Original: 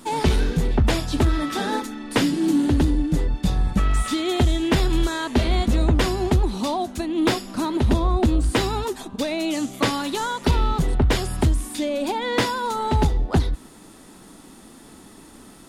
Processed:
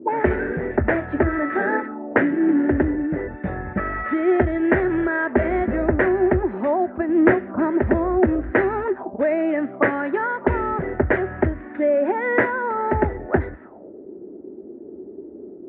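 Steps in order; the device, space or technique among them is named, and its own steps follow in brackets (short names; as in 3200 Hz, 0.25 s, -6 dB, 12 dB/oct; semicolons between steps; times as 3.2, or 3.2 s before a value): envelope filter bass rig (envelope low-pass 330–1800 Hz up, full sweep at -22.5 dBFS; speaker cabinet 74–2100 Hz, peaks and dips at 110 Hz -5 dB, 160 Hz -8 dB, 370 Hz +8 dB, 600 Hz +9 dB, 1100 Hz -6 dB); 7.09–7.7 low shelf 180 Hz +9 dB; gain -1 dB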